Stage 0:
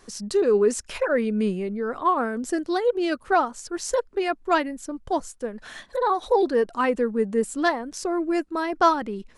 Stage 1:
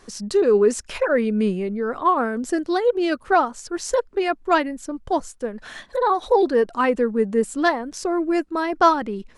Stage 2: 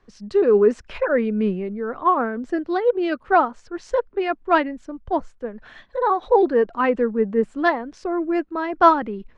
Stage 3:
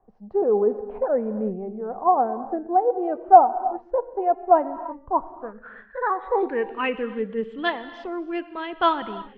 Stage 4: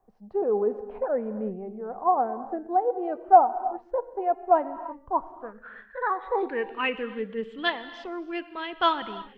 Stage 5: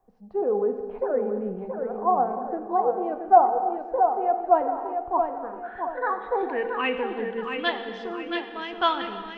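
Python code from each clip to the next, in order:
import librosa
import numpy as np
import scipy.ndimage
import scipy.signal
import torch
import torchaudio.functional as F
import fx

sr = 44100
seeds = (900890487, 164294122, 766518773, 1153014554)

y1 = fx.high_shelf(x, sr, hz=7200.0, db=-4.5)
y1 = y1 * librosa.db_to_amplitude(3.0)
y2 = scipy.signal.sosfilt(scipy.signal.butter(2, 2700.0, 'lowpass', fs=sr, output='sos'), y1)
y2 = fx.band_widen(y2, sr, depth_pct=40)
y3 = fx.rev_gated(y2, sr, seeds[0], gate_ms=360, shape='flat', drr_db=12.0)
y3 = fx.filter_sweep_lowpass(y3, sr, from_hz=770.0, to_hz=3200.0, start_s=4.59, end_s=7.15, q=6.9)
y3 = y3 * librosa.db_to_amplitude(-7.5)
y4 = fx.high_shelf(y3, sr, hz=2000.0, db=10.0)
y4 = y4 * librosa.db_to_amplitude(-5.0)
y5 = fx.echo_feedback(y4, sr, ms=676, feedback_pct=39, wet_db=-6)
y5 = fx.rev_fdn(y5, sr, rt60_s=1.5, lf_ratio=1.0, hf_ratio=0.9, size_ms=12.0, drr_db=9.0)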